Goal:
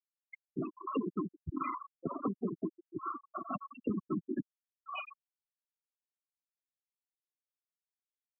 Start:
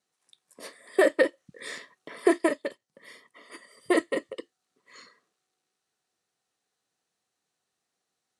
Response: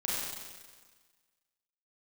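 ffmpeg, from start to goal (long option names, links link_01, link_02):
-filter_complex "[0:a]highshelf=frequency=11000:gain=-4.5,asetrate=25476,aresample=44100,atempo=1.73107,adynamicequalizer=threshold=0.00447:dfrequency=2900:dqfactor=1.2:tfrequency=2900:tqfactor=1.2:attack=5:release=100:ratio=0.375:range=2:mode=boostabove:tftype=bell,acrossover=split=220|1600|4400[link_01][link_02][link_03][link_04];[link_01]acompressor=threshold=-36dB:ratio=4[link_05];[link_02]acompressor=threshold=-36dB:ratio=4[link_06];[link_03]acompressor=threshold=-49dB:ratio=4[link_07];[link_04]acompressor=threshold=-52dB:ratio=4[link_08];[link_05][link_06][link_07][link_08]amix=inputs=4:normalize=0,asplit=2[link_09][link_10];[link_10]adelay=136,lowpass=frequency=1100:poles=1,volume=-22dB,asplit=2[link_11][link_12];[link_12]adelay=136,lowpass=frequency=1100:poles=1,volume=0.43,asplit=2[link_13][link_14];[link_14]adelay=136,lowpass=frequency=1100:poles=1,volume=0.43[link_15];[link_09][link_11][link_13][link_15]amix=inputs=4:normalize=0,asplit=4[link_16][link_17][link_18][link_19];[link_17]asetrate=22050,aresample=44100,atempo=2,volume=-18dB[link_20];[link_18]asetrate=52444,aresample=44100,atempo=0.840896,volume=-4dB[link_21];[link_19]asetrate=88200,aresample=44100,atempo=0.5,volume=-14dB[link_22];[link_16][link_20][link_21][link_22]amix=inputs=4:normalize=0,acompressor=threshold=-46dB:ratio=10,asoftclip=type=tanh:threshold=-38.5dB,afftfilt=real='re*gte(hypot(re,im),0.01)':imag='im*gte(hypot(re,im),0.01)':win_size=1024:overlap=0.75,volume=16dB"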